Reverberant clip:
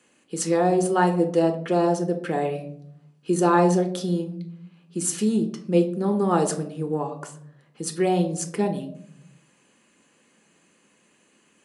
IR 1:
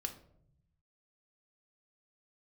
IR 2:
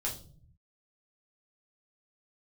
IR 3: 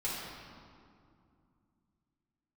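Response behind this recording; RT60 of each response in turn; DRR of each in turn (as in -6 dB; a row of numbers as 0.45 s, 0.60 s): 1; 0.70 s, 0.45 s, 2.4 s; 4.5 dB, -4.5 dB, -8.5 dB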